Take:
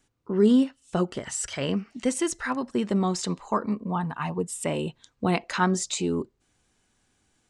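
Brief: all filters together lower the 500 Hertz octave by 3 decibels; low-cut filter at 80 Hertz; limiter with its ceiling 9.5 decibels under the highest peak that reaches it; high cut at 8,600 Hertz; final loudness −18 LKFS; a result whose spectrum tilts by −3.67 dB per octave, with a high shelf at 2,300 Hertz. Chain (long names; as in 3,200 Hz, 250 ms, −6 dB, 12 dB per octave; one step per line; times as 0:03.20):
high-pass filter 80 Hz
low-pass filter 8,600 Hz
parametric band 500 Hz −4.5 dB
high-shelf EQ 2,300 Hz +8.5 dB
level +10 dB
brickwall limiter −7 dBFS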